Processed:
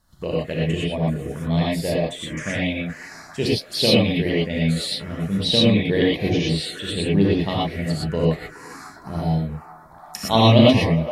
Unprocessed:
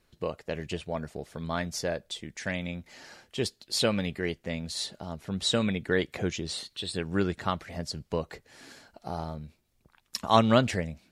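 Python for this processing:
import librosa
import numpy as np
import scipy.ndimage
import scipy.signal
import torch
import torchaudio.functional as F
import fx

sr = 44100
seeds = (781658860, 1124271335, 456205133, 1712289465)

y = fx.echo_wet_bandpass(x, sr, ms=420, feedback_pct=66, hz=880.0, wet_db=-12)
y = fx.env_phaser(y, sr, low_hz=410.0, high_hz=1400.0, full_db=-28.5)
y = fx.rev_gated(y, sr, seeds[0], gate_ms=140, shape='rising', drr_db=-5.5)
y = F.gain(torch.from_numpy(y), 5.5).numpy()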